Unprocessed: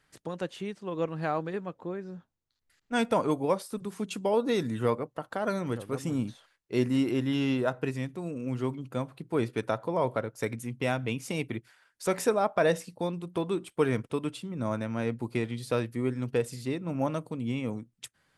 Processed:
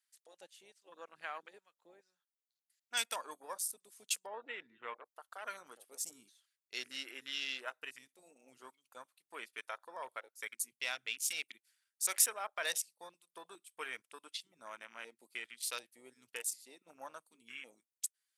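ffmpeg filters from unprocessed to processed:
-filter_complex "[0:a]asplit=3[s0][s1][s2];[s0]afade=t=out:st=4.25:d=0.02[s3];[s1]lowpass=f=2700:w=0.5412,lowpass=f=2700:w=1.3066,afade=t=in:st=4.25:d=0.02,afade=t=out:st=5.04:d=0.02[s4];[s2]afade=t=in:st=5.04:d=0.02[s5];[s3][s4][s5]amix=inputs=3:normalize=0,aderivative,afwtdn=0.00251,highpass=f=1300:p=1,volume=2.82"

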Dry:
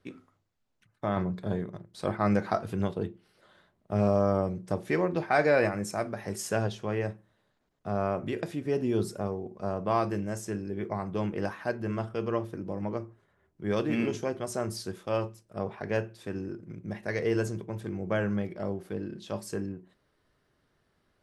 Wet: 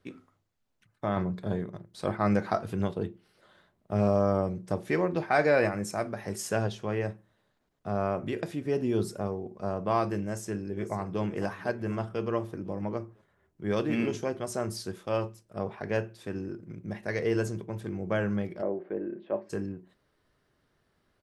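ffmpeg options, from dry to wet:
-filter_complex "[0:a]asplit=2[s0][s1];[s1]afade=t=in:st=10.22:d=0.01,afade=t=out:st=11.21:d=0.01,aecho=0:1:500|1000|1500|2000:0.211349|0.095107|0.0427982|0.0192592[s2];[s0][s2]amix=inputs=2:normalize=0,asplit=3[s3][s4][s5];[s3]afade=t=out:st=18.61:d=0.02[s6];[s4]highpass=250,equalizer=f=350:t=q:w=4:g=7,equalizer=f=590:t=q:w=4:g=7,equalizer=f=1300:t=q:w=4:g=-4,lowpass=f=2100:w=0.5412,lowpass=f=2100:w=1.3066,afade=t=in:st=18.61:d=0.02,afade=t=out:st=19.49:d=0.02[s7];[s5]afade=t=in:st=19.49:d=0.02[s8];[s6][s7][s8]amix=inputs=3:normalize=0"

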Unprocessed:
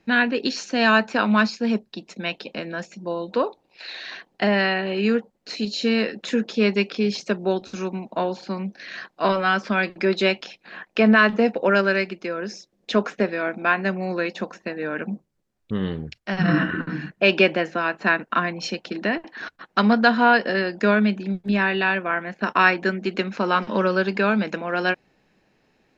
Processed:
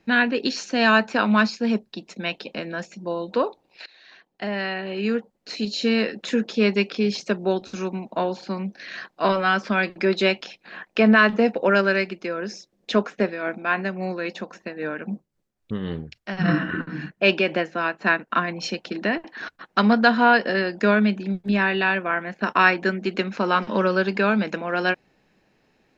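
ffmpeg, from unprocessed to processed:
-filter_complex "[0:a]asplit=3[s0][s1][s2];[s0]afade=t=out:st=13:d=0.02[s3];[s1]tremolo=f=3.7:d=0.46,afade=t=in:st=13:d=0.02,afade=t=out:st=18.47:d=0.02[s4];[s2]afade=t=in:st=18.47:d=0.02[s5];[s3][s4][s5]amix=inputs=3:normalize=0,asplit=2[s6][s7];[s6]atrim=end=3.86,asetpts=PTS-STARTPTS,afade=t=out:st=3.856:d=0.004:c=hsin:silence=0.0891251[s8];[s7]atrim=start=3.86,asetpts=PTS-STARTPTS,afade=t=in:d=1.86:silence=0.0891251[s9];[s8][s9]concat=n=2:v=0:a=1"

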